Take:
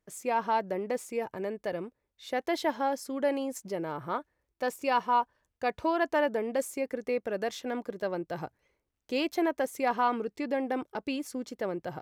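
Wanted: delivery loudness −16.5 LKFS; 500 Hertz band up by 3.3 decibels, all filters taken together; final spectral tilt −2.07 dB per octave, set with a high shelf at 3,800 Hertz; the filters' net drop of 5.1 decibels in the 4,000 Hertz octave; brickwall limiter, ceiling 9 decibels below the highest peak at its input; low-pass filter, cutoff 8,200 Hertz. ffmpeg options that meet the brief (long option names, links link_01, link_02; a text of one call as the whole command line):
ffmpeg -i in.wav -af "lowpass=8200,equalizer=frequency=500:width_type=o:gain=4,highshelf=frequency=3800:gain=-4,equalizer=frequency=4000:width_type=o:gain=-4.5,volume=17dB,alimiter=limit=-6dB:level=0:latency=1" out.wav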